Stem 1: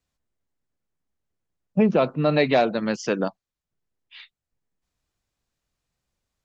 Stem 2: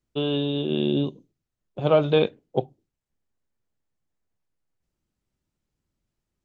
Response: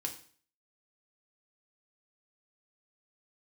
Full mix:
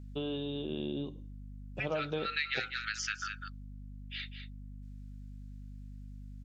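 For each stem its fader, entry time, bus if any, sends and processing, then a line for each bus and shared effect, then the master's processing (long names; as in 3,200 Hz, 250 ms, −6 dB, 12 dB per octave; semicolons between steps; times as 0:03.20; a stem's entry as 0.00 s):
+3.0 dB, 0.00 s, send −21.5 dB, echo send −9.5 dB, Butterworth high-pass 1,300 Hz 96 dB per octave
−9.0 dB, 0.00 s, send −12 dB, no echo send, no processing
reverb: on, RT60 0.45 s, pre-delay 3 ms
echo: single-tap delay 201 ms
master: mains hum 50 Hz, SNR 13 dB; downward compressor 2.5 to 1, threshold −35 dBFS, peak gain reduction 11 dB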